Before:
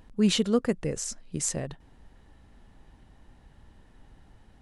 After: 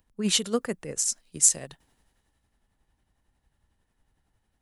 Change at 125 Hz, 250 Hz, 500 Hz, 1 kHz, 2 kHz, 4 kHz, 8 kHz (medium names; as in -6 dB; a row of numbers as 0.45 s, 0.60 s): -6.5 dB, -6.0 dB, -3.0 dB, 0.0 dB, +0.5 dB, +3.0 dB, +9.5 dB